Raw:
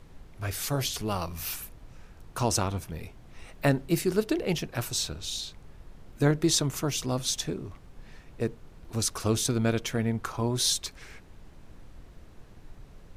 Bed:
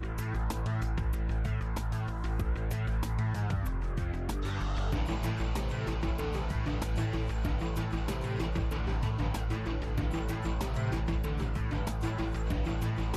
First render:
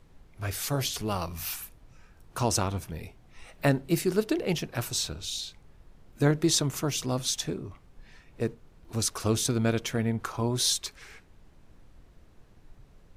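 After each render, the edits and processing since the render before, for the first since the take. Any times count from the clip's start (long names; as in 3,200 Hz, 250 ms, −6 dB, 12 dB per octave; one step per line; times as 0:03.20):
noise reduction from a noise print 6 dB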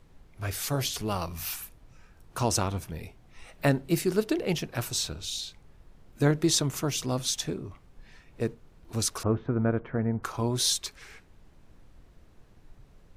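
0:09.23–0:10.23: low-pass filter 1,600 Hz 24 dB per octave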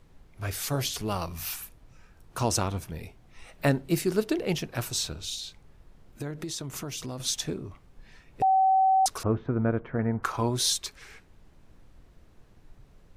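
0:05.34–0:07.20: downward compressor, threshold −32 dBFS
0:08.42–0:09.06: beep over 764 Hz −18 dBFS
0:09.99–0:10.50: parametric band 1,400 Hz +6 dB 2.2 octaves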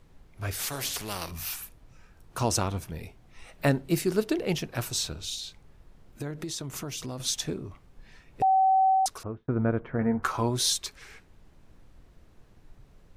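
0:00.59–0:01.31: every bin compressed towards the loudest bin 2 to 1
0:08.89–0:09.48: fade out
0:10.00–0:10.40: double-tracking delay 13 ms −5 dB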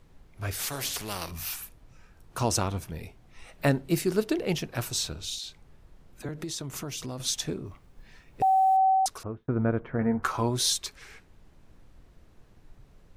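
0:05.39–0:06.29: all-pass dispersion lows, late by 47 ms, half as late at 510 Hz
0:07.66–0:08.77: log-companded quantiser 8 bits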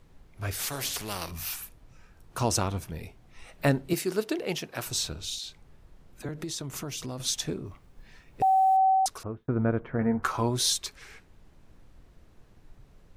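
0:03.93–0:04.86: high-pass filter 330 Hz 6 dB per octave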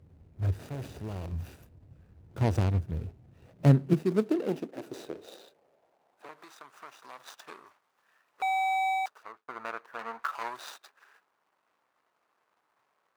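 running median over 41 samples
high-pass filter sweep 81 Hz → 1,100 Hz, 0:03.11–0:06.51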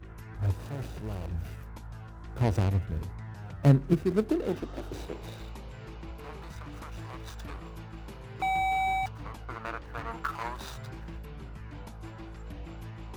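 mix in bed −11 dB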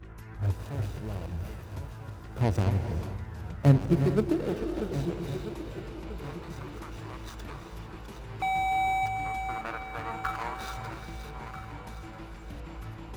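feedback delay that plays each chunk backwards 644 ms, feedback 57%, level −9 dB
reverb whose tail is shaped and stops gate 470 ms rising, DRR 8.5 dB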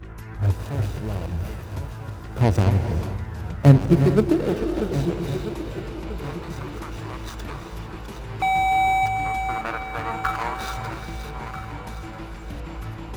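level +7.5 dB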